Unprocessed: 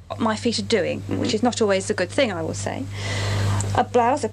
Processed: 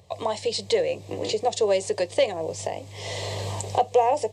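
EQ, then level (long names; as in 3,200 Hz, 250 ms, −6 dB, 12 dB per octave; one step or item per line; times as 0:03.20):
high-pass filter 160 Hz 12 dB per octave
high-shelf EQ 5,800 Hz −5.5 dB
phaser with its sweep stopped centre 590 Hz, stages 4
0.0 dB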